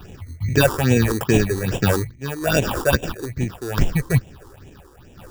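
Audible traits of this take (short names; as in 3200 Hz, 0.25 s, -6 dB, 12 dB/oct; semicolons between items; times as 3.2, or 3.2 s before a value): aliases and images of a low sample rate 2100 Hz, jitter 0%; random-step tremolo 2.9 Hz; phasing stages 6, 2.4 Hz, lowest notch 160–1300 Hz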